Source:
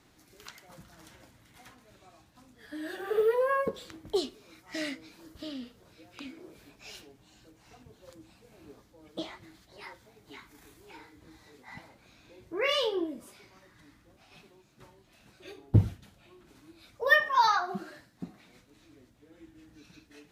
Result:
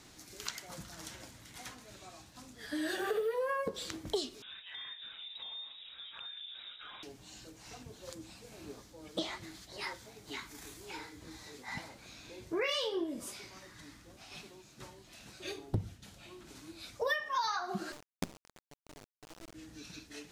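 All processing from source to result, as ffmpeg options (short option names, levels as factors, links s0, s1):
-filter_complex "[0:a]asettb=1/sr,asplit=3[s0][s1][s2];[s0]atrim=end=4.424[s3];[s1]atrim=start=4.42:end=7.03,asetpts=PTS-STARTPTS,afade=t=in:d=0.004:c=qsin,afade=t=out:st=2.606:d=0.004:c=qsin,lowpass=f=3300:t=q:w=0.5098,lowpass=f=3300:t=q:w=0.6013,lowpass=f=3300:t=q:w=0.9,lowpass=f=3300:t=q:w=2.563,afreqshift=-3900,acompressor=threshold=0.00282:ratio=6:attack=3.2:release=140:knee=1:detection=peak[s4];[s2]atrim=start=7.026[s5];[s3][s4]acrossfade=d=0.004:c1=hsin:c2=qsin[s6];[s6][s5]acrossfade=d=0.004:c1=qsin:c2=hsin,asettb=1/sr,asplit=3[s7][s8][s9];[s7]atrim=end=17.924[s10];[s8]atrim=start=17.92:end=19.54,asetpts=PTS-STARTPTS,afade=t=in:d=0.004:c=qsin,afade=t=out:st=1.616:d=0.004:c=qsin,lowpass=f=1000:w=0.5412,lowpass=f=1000:w=1.3066,acrusher=bits=6:dc=4:mix=0:aa=0.000001[s11];[s9]atrim=start=19.536[s12];[s10][s11]acrossfade=d=0.004:c1=hsin:c2=qsin[s13];[s13][s12]acrossfade=d=0.004:c1=qsin:c2=hsin,equalizer=f=6500:w=0.62:g=8,acompressor=threshold=0.0178:ratio=8,volume=1.58"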